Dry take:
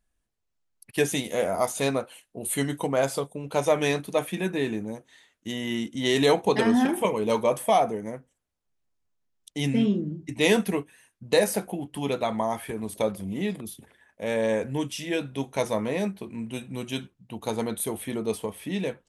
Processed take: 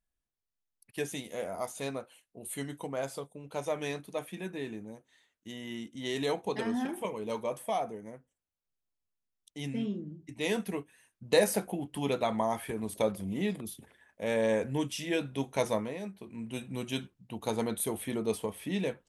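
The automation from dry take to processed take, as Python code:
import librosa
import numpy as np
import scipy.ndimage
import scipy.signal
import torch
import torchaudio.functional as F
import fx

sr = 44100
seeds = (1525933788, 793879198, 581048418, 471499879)

y = fx.gain(x, sr, db=fx.line((10.43, -11.0), (11.4, -3.0), (15.74, -3.0), (15.99, -13.0), (16.61, -3.0)))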